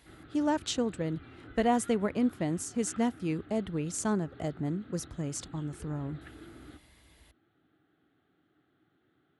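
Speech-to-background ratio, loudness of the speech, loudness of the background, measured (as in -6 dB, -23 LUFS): 19.0 dB, -32.5 LUFS, -51.5 LUFS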